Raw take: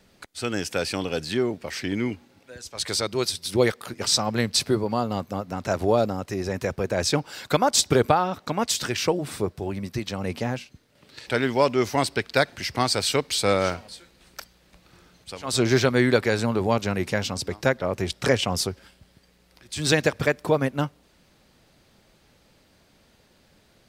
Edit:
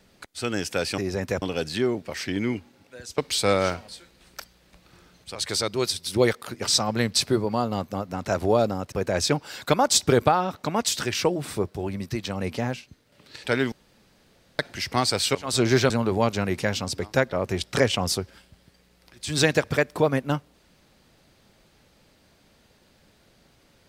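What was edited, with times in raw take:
0:06.31–0:06.75: move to 0:00.98
0:11.55–0:12.42: fill with room tone
0:13.18–0:15.35: move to 0:02.74
0:15.90–0:16.39: remove

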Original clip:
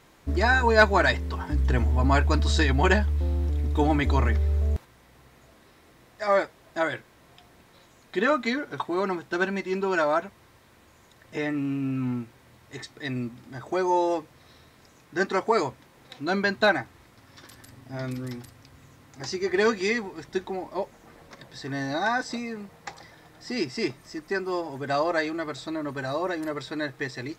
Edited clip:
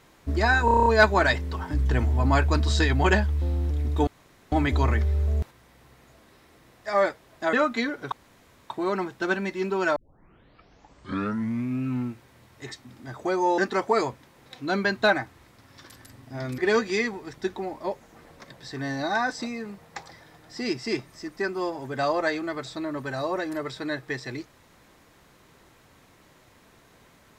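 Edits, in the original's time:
0:00.65: stutter 0.03 s, 8 plays
0:03.86: splice in room tone 0.45 s
0:06.87–0:08.22: remove
0:08.81: splice in room tone 0.58 s
0:10.07: tape start 1.88 s
0:12.96–0:13.32: remove
0:14.05–0:15.17: remove
0:18.17–0:19.49: remove

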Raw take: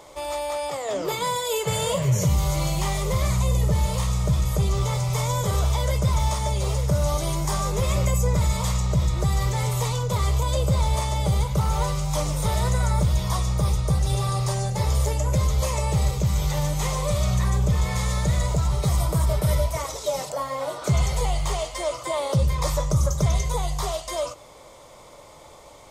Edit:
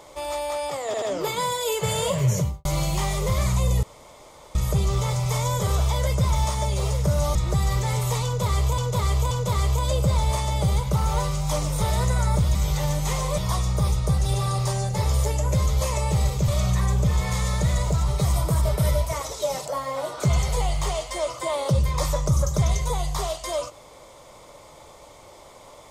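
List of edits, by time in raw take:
0:00.86: stutter 0.08 s, 3 plays
0:02.15–0:02.49: fade out and dull
0:03.67–0:04.39: fill with room tone
0:07.19–0:09.05: remove
0:09.95–0:10.48: repeat, 3 plays
0:16.29–0:17.12: move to 0:13.19

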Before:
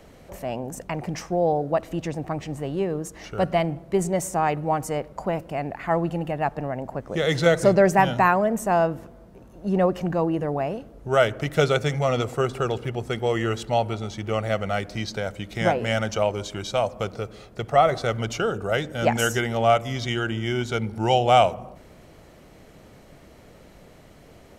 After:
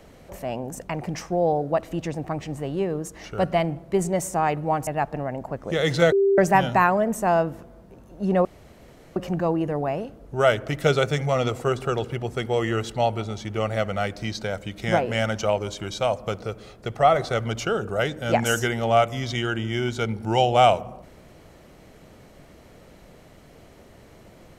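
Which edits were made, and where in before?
0:04.87–0:06.31: remove
0:07.56–0:07.82: beep over 394 Hz −15.5 dBFS
0:09.89: splice in room tone 0.71 s

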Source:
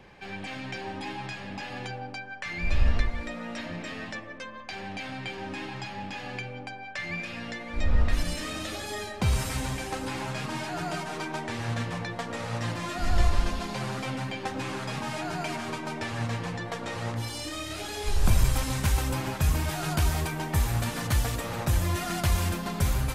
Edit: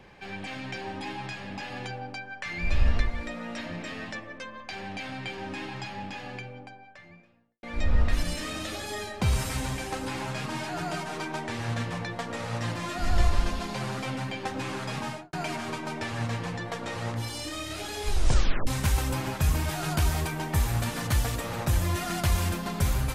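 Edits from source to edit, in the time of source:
0:05.87–0:07.63: fade out and dull
0:15.05–0:15.33: fade out and dull
0:18.13: tape stop 0.54 s

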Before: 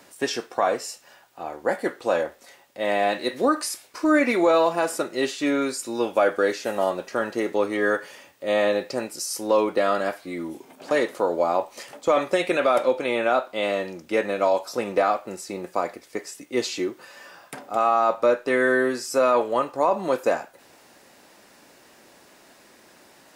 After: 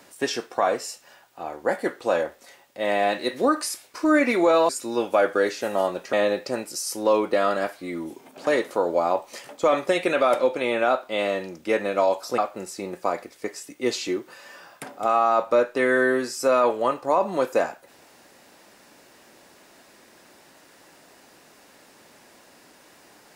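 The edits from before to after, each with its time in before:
0:04.69–0:05.72: remove
0:07.16–0:08.57: remove
0:14.82–0:15.09: remove

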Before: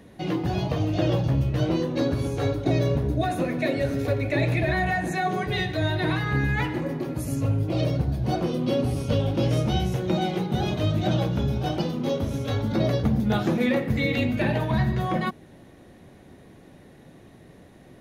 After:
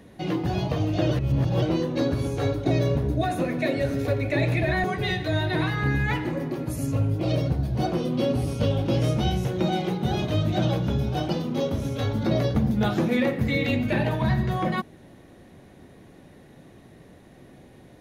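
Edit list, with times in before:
0:01.11–0:01.62: reverse
0:04.84–0:05.33: remove

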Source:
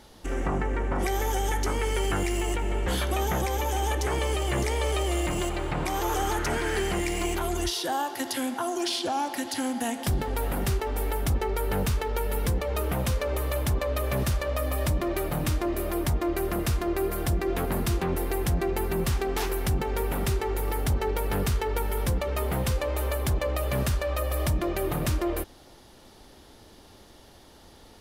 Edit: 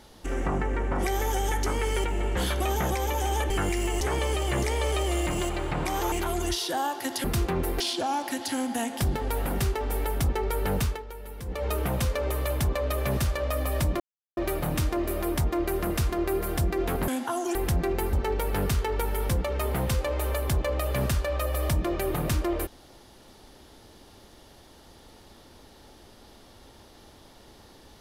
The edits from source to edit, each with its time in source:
0:02.04–0:02.55: move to 0:04.01
0:06.12–0:07.27: remove
0:08.39–0:08.86: swap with 0:17.77–0:18.33
0:11.90–0:12.70: duck −12.5 dB, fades 0.20 s
0:15.06: splice in silence 0.37 s
0:18.91–0:20.90: remove

